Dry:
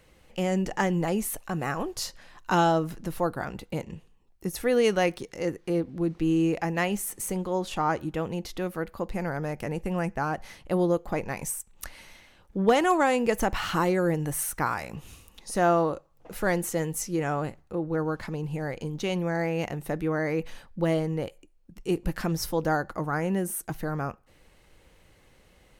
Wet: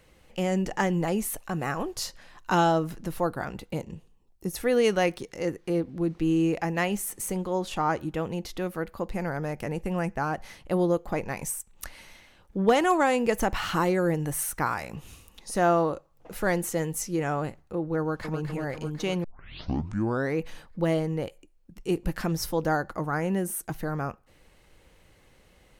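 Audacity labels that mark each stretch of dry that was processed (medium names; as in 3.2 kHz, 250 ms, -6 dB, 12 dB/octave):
3.770000	4.500000	peaking EQ 1.9 kHz -6 dB 1.6 oct
17.990000	18.390000	echo throw 250 ms, feedback 70%, level -7 dB
19.240000	19.240000	tape start 1.13 s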